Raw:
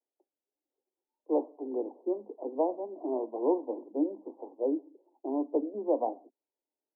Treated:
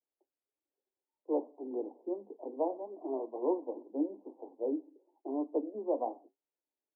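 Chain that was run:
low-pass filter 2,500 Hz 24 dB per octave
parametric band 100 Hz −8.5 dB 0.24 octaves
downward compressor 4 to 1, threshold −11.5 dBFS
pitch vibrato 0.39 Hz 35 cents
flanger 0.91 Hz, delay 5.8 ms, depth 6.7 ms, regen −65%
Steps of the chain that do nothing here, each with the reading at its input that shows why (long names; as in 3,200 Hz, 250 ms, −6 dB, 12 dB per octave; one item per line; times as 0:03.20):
low-pass filter 2,500 Hz: nothing at its input above 1,100 Hz
parametric band 100 Hz: nothing at its input below 200 Hz
downward compressor, threshold −11.5 dBFS: peak of its input −15.5 dBFS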